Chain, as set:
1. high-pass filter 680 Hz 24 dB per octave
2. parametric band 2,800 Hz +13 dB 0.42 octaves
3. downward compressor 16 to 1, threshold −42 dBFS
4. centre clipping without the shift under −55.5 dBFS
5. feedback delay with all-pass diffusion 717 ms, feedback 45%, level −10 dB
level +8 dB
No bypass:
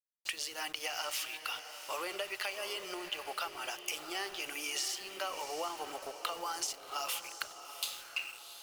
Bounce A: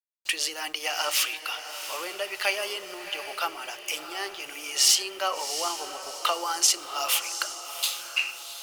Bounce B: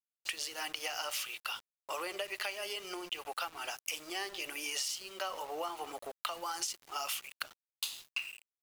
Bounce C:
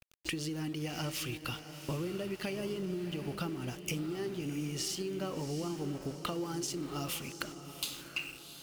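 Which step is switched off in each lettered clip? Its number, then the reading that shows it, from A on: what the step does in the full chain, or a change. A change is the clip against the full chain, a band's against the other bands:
3, average gain reduction 6.5 dB
5, echo-to-direct ratio −9.0 dB to none audible
1, 125 Hz band +33.5 dB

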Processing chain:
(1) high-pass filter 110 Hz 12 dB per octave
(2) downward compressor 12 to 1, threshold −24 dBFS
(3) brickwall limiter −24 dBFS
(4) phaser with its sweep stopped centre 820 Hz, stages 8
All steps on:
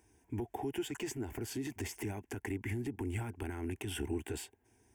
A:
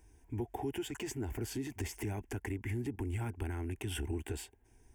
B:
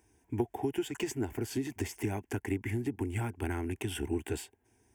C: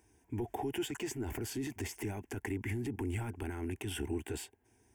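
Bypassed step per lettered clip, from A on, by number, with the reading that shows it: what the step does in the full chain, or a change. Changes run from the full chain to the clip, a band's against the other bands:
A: 1, 125 Hz band +3.0 dB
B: 3, average gain reduction 2.5 dB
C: 2, average gain reduction 5.5 dB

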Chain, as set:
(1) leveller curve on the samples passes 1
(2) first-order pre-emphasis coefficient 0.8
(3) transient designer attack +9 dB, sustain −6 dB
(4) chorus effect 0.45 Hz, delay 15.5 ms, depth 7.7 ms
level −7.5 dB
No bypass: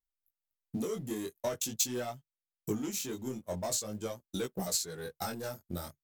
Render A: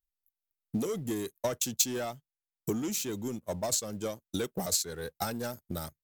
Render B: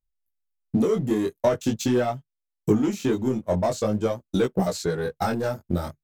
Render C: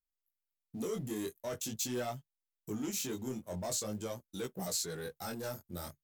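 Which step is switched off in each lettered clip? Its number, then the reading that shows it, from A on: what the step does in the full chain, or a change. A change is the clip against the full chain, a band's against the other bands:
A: 4, change in crest factor +2.0 dB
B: 2, 8 kHz band −17.5 dB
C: 3, change in crest factor −5.0 dB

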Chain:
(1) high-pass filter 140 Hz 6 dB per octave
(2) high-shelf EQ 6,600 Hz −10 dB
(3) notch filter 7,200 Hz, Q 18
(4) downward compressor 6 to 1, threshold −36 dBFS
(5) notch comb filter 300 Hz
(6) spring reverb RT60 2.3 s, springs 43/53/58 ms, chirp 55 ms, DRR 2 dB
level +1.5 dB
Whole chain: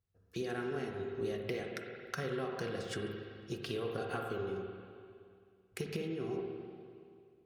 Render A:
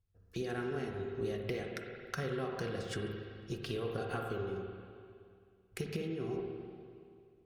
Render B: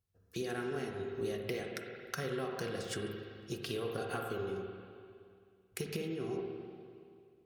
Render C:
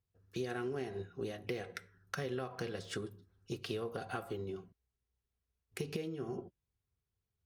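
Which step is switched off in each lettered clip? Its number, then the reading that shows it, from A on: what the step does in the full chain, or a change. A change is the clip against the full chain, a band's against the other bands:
1, 125 Hz band +3.0 dB
2, 8 kHz band +5.0 dB
6, change in momentary loudness spread −7 LU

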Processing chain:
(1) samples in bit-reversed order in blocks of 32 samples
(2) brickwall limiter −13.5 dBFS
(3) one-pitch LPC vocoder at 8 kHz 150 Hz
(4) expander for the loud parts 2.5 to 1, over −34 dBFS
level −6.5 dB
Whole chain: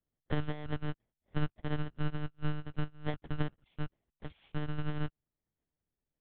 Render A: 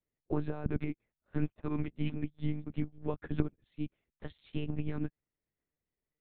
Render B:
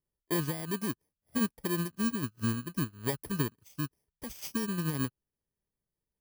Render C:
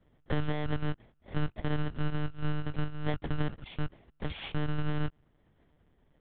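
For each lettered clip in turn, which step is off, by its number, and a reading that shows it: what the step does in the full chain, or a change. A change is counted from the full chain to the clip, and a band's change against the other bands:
1, 250 Hz band +7.5 dB
3, 125 Hz band −4.0 dB
4, change in momentary loudness spread −1 LU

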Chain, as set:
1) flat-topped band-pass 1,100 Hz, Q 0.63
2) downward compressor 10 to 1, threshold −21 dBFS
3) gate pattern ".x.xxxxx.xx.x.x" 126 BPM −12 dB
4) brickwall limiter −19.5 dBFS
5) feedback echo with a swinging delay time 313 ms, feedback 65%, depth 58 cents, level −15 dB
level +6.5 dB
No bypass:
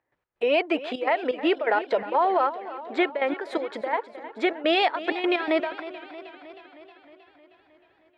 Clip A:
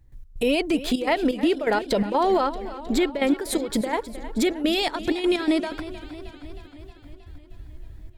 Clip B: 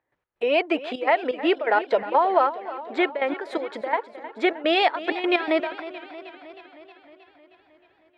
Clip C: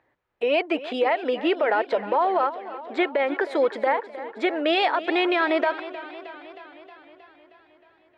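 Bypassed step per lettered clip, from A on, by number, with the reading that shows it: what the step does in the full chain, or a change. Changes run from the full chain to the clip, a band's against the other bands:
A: 1, 250 Hz band +7.0 dB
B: 4, change in crest factor +3.0 dB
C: 3, change in crest factor −1.5 dB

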